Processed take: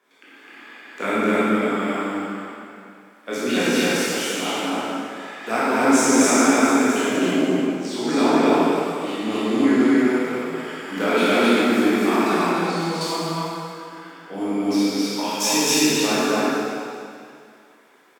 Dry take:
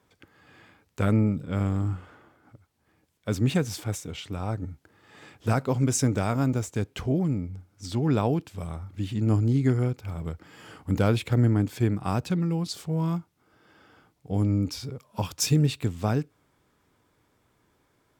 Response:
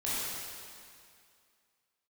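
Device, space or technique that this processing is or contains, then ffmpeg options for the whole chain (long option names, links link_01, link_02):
stadium PA: -filter_complex "[0:a]highpass=frequency=130:width=0.5412,highpass=frequency=130:width=1.3066,equalizer=frequency=1900:width_type=o:width=1.6:gain=7.5,aecho=1:1:160.3|256.6:0.282|1[link_01];[1:a]atrim=start_sample=2205[link_02];[link_01][link_02]afir=irnorm=-1:irlink=0,highpass=frequency=250:width=0.5412,highpass=frequency=250:width=1.3066,asettb=1/sr,asplit=3[link_03][link_04][link_05];[link_03]atrim=end=12.514[link_06];[link_04]atrim=start=12.51:end=13.01,asetpts=PTS-STARTPTS,afade=type=in:duration=0.004:curve=qsin,afade=type=out:start_time=0.496:duration=0.004:curve=qsin,acrossover=split=2900[link_07][link_08];[link_08]acompressor=threshold=-36dB:ratio=4:attack=1:release=60[link_09];[link_07][link_09]amix=inputs=2:normalize=0[link_10];[link_05]atrim=start=13.006[link_11];[link_06][link_10]acrossfade=duration=0.004:curve1=hsin:curve2=qsin[link_12];[link_12][link_11]acrossfade=duration=0.004:curve1=qsin:curve2=hsin"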